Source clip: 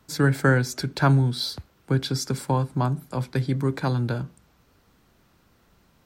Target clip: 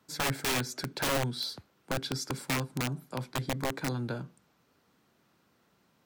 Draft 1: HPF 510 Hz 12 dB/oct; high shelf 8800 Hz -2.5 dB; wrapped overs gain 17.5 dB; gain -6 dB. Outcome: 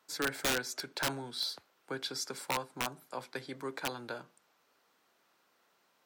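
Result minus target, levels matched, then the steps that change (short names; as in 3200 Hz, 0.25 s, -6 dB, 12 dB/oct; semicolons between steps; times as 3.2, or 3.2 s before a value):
125 Hz band -11.0 dB
change: HPF 150 Hz 12 dB/oct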